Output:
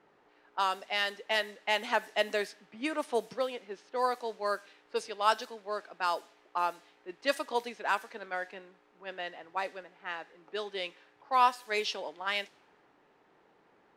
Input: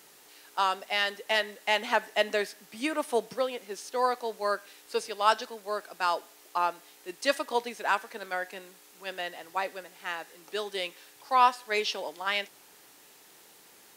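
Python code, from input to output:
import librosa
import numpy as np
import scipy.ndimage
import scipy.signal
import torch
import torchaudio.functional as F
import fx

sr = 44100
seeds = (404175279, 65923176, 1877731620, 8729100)

y = fx.env_lowpass(x, sr, base_hz=1300.0, full_db=-23.5)
y = y * 10.0 ** (-3.0 / 20.0)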